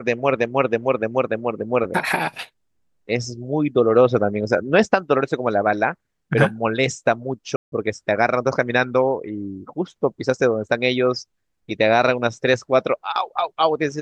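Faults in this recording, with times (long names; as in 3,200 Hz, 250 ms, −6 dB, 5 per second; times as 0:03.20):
0:07.56–0:07.72: drop-out 162 ms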